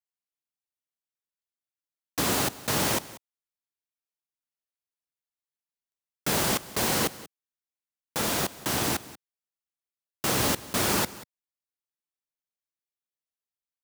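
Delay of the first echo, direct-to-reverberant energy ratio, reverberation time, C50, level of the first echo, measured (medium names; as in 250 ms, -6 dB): 186 ms, no reverb, no reverb, no reverb, -18.5 dB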